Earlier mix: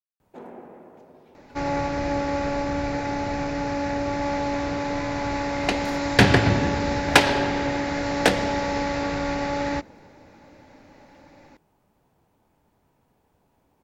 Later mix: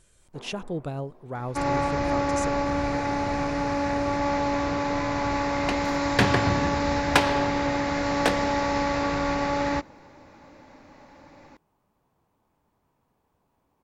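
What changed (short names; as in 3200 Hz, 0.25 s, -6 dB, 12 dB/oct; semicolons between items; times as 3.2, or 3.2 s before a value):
speech: unmuted; second sound -6.0 dB; master: add bell 1100 Hz +7 dB 0.32 oct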